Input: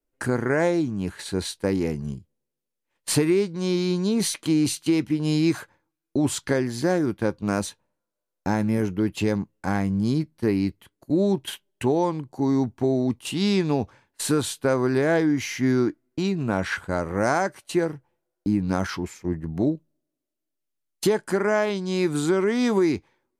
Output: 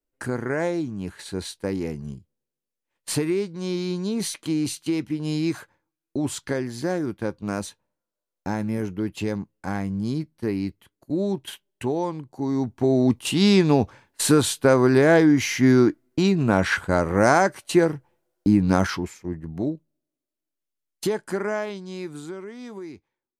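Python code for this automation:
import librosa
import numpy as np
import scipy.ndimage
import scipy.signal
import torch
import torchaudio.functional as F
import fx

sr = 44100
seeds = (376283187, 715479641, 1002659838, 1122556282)

y = fx.gain(x, sr, db=fx.line((12.49, -3.5), (13.07, 5.0), (18.81, 5.0), (19.26, -3.5), (21.41, -3.5), (22.56, -16.5)))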